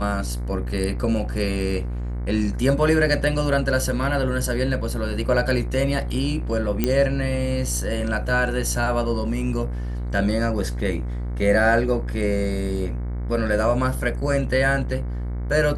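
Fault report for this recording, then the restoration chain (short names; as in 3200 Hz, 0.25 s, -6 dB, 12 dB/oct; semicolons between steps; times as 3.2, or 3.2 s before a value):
buzz 60 Hz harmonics 38 -27 dBFS
6.84 pop -6 dBFS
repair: de-click; de-hum 60 Hz, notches 38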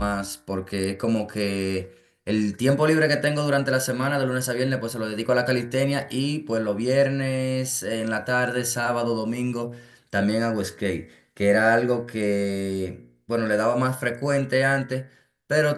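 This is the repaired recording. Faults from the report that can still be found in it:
none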